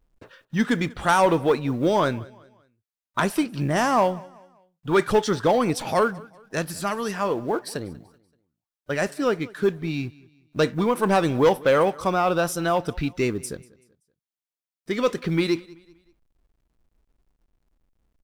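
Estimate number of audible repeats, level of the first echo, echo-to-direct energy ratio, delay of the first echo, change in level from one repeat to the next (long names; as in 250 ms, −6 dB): 2, −23.0 dB, −22.5 dB, 191 ms, −8.0 dB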